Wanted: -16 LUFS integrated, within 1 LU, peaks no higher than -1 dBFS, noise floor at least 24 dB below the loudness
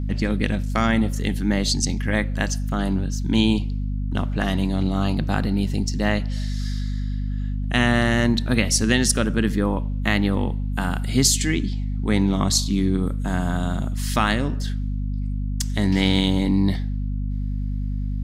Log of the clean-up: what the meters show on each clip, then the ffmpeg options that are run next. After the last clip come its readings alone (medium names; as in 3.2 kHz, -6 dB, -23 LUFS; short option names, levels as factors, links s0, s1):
hum 50 Hz; highest harmonic 250 Hz; hum level -22 dBFS; loudness -22.5 LUFS; peak level -4.0 dBFS; loudness target -16.0 LUFS
-> -af "bandreject=f=50:t=h:w=6,bandreject=f=100:t=h:w=6,bandreject=f=150:t=h:w=6,bandreject=f=200:t=h:w=6,bandreject=f=250:t=h:w=6"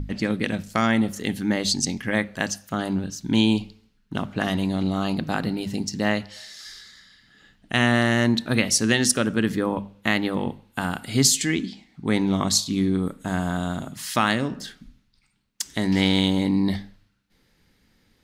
hum not found; loudness -23.5 LUFS; peak level -4.5 dBFS; loudness target -16.0 LUFS
-> -af "volume=2.37,alimiter=limit=0.891:level=0:latency=1"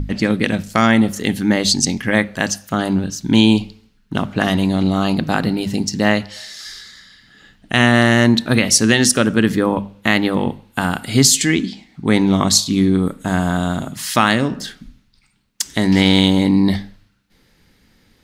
loudness -16.5 LUFS; peak level -1.0 dBFS; noise floor -57 dBFS